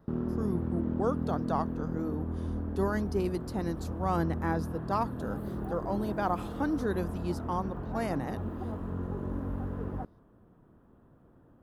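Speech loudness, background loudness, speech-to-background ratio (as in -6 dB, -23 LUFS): -34.5 LUFS, -36.5 LUFS, 2.0 dB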